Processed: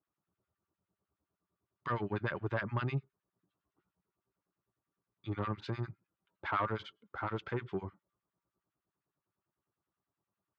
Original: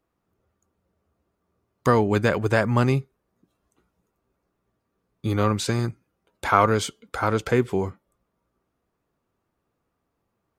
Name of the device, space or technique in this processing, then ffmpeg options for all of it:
guitar amplifier with harmonic tremolo: -filter_complex "[0:a]acrossover=split=1200[link_01][link_02];[link_01]aeval=exprs='val(0)*(1-1/2+1/2*cos(2*PI*9.8*n/s))':channel_layout=same[link_03];[link_02]aeval=exprs='val(0)*(1-1/2-1/2*cos(2*PI*9.8*n/s))':channel_layout=same[link_04];[link_03][link_04]amix=inputs=2:normalize=0,asoftclip=type=tanh:threshold=-15dB,highpass=110,equalizer=frequency=240:width_type=q:width=4:gain=-9,equalizer=frequency=480:width_type=q:width=4:gain=-10,equalizer=frequency=710:width_type=q:width=4:gain=-4,equalizer=frequency=2300:width_type=q:width=4:gain=-4,lowpass=frequency=3400:width=0.5412,lowpass=frequency=3400:width=1.3066,volume=-5.5dB"

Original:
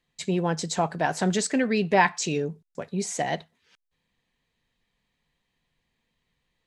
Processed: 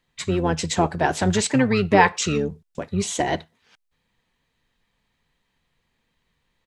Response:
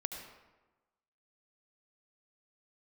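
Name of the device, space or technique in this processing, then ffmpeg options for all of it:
octave pedal: -filter_complex "[0:a]asplit=3[link_01][link_02][link_03];[link_01]afade=type=out:start_time=1.41:duration=0.02[link_04];[link_02]highpass=frequency=150:width=0.5412,highpass=frequency=150:width=1.3066,afade=type=in:start_time=1.41:duration=0.02,afade=type=out:start_time=2.5:duration=0.02[link_05];[link_03]afade=type=in:start_time=2.5:duration=0.02[link_06];[link_04][link_05][link_06]amix=inputs=3:normalize=0,asplit=2[link_07][link_08];[link_08]asetrate=22050,aresample=44100,atempo=2,volume=-6dB[link_09];[link_07][link_09]amix=inputs=2:normalize=0,volume=3.5dB"

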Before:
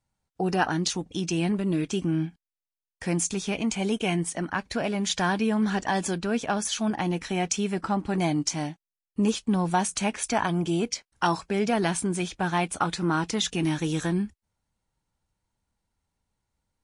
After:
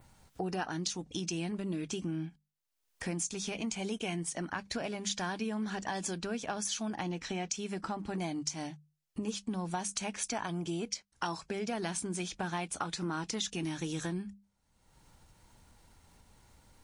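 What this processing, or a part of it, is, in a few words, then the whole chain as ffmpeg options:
upward and downward compression: -filter_complex "[0:a]asettb=1/sr,asplit=3[link_01][link_02][link_03];[link_01]atrim=end=7.034[link_04];[link_02]atrim=start=7.03:end=7.55,asetpts=PTS-STARTPTS,afade=type=in:duration=0.004:curve=qsin,afade=type=out:start_time=0.516:duration=0.004:curve=qsin,lowpass=frequency=7800:width=0.5412,lowpass=frequency=7800:width=1.3066[link_05];[link_03]atrim=start=7.546[link_06];[link_04][link_05]acrossfade=duration=0.004:curve1=hsin:curve2=qsin[link_07];[link_07][link_06]acrossfade=duration=0.004:curve1=qsin:curve2=hsin,adynamicequalizer=threshold=0.00708:dfrequency=5800:dqfactor=0.97:tfrequency=5800:tqfactor=0.97:attack=5:release=100:ratio=0.375:range=3:mode=boostabove:tftype=bell,acompressor=mode=upward:threshold=-39dB:ratio=2.5,acompressor=threshold=-31dB:ratio=4,bandreject=frequency=50:width_type=h:width=6,bandreject=frequency=100:width_type=h:width=6,bandreject=frequency=150:width_type=h:width=6,bandreject=frequency=200:width_type=h:width=6,volume=-2.5dB"

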